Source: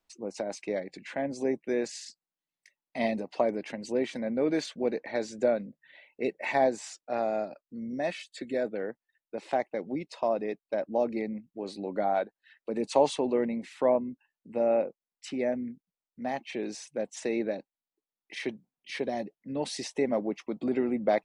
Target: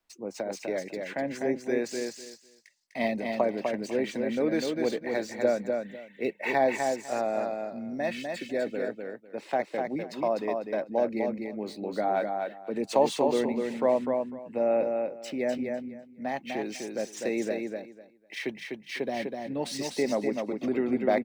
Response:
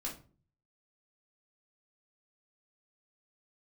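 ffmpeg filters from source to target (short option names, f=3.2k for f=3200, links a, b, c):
-filter_complex "[0:a]equalizer=f=1.8k:t=o:w=0.94:g=2.5,acrossover=split=100|830|3700[a][b][c][d];[d]acrusher=bits=2:mode=log:mix=0:aa=0.000001[e];[a][b][c][e]amix=inputs=4:normalize=0,aecho=1:1:250|500|750:0.596|0.113|0.0215"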